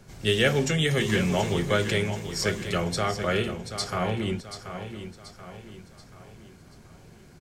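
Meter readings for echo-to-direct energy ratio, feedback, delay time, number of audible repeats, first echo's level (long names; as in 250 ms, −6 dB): −9.0 dB, 44%, 732 ms, 4, −10.0 dB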